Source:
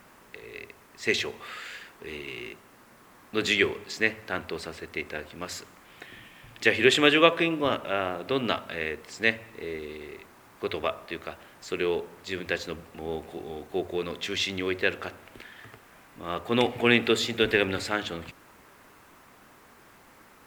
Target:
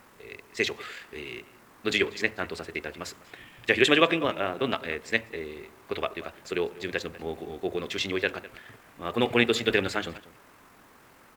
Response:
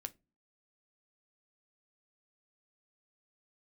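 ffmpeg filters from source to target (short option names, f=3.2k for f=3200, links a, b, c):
-filter_complex "[0:a]asplit=2[a][b];[b]adelay=349.9,volume=-17dB,highshelf=f=4k:g=-7.87[c];[a][c]amix=inputs=2:normalize=0,atempo=1.8"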